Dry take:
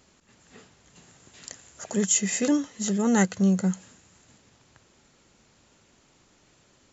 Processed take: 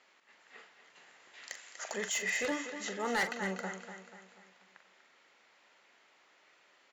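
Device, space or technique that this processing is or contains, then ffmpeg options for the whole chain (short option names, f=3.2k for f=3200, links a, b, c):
megaphone: -filter_complex "[0:a]asettb=1/sr,asplit=3[a][b][c];[a]atrim=end=1.494[d];[b]atrim=start=1.49:end=1.94,asetpts=PTS-STARTPTS,afade=t=in:d=0.004:c=qsin,afade=t=out:st=0.446:d=0.004:c=qsin,highshelf=f=3.5k:g=11[e];[c]atrim=start=1.936[f];[d][e]acrossfade=d=0.004:c1=hsin:c2=qsin[g];[g][f]acrossfade=d=0.004:c1=qsin:c2=hsin,highpass=640,lowpass=3.6k,equalizer=f=2k:t=o:w=0.45:g=6,aecho=1:1:243|486|729|972|1215:0.299|0.14|0.0659|0.031|0.0146,asoftclip=type=hard:threshold=-25.5dB,asplit=2[h][i];[i]adelay=42,volume=-10dB[j];[h][j]amix=inputs=2:normalize=0,volume=-1.5dB"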